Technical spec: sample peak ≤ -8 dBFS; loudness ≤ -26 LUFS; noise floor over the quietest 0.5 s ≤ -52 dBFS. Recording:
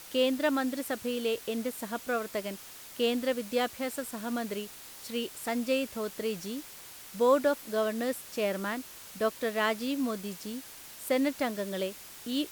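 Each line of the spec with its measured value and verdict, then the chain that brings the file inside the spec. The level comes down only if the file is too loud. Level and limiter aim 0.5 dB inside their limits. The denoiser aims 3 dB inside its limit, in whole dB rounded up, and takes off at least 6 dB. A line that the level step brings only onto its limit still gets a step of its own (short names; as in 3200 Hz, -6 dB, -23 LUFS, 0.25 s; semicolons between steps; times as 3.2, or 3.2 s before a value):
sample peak -13.0 dBFS: OK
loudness -31.5 LUFS: OK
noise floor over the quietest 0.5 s -48 dBFS: fail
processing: denoiser 7 dB, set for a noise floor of -48 dBFS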